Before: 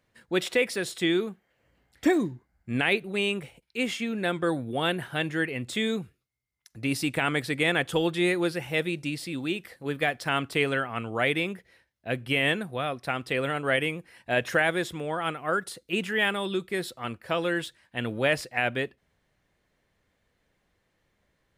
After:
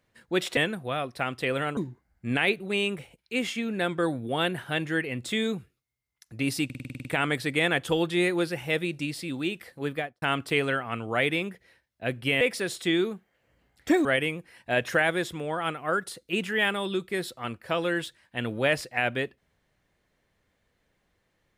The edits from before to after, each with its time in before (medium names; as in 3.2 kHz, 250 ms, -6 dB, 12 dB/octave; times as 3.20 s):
0.57–2.21 s: swap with 12.45–13.65 s
7.09 s: stutter 0.05 s, 9 plays
9.91–10.26 s: studio fade out